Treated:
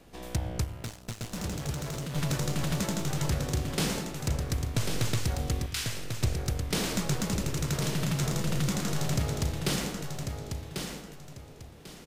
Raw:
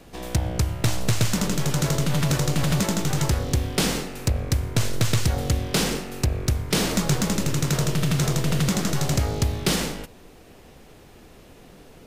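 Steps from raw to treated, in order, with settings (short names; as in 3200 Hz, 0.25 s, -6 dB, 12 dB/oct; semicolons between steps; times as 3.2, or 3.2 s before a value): 0.64–2.16 tube stage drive 24 dB, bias 0.4; 5.66–6.22 Chebyshev high-pass 1800 Hz, order 2; feedback echo 1.094 s, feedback 27%, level -6 dB; gain -7.5 dB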